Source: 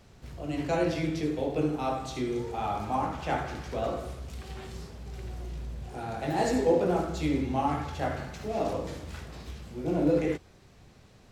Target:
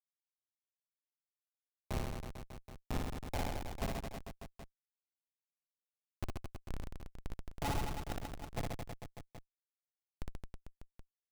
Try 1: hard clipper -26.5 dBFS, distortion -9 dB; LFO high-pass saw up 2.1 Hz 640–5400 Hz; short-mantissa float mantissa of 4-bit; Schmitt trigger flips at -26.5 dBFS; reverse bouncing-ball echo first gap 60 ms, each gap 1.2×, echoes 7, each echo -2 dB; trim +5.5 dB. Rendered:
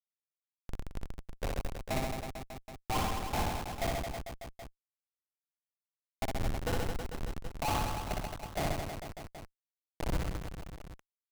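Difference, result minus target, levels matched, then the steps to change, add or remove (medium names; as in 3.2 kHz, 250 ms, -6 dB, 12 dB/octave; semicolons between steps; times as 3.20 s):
hard clipper: distortion -5 dB
change: hard clipper -33 dBFS, distortion -5 dB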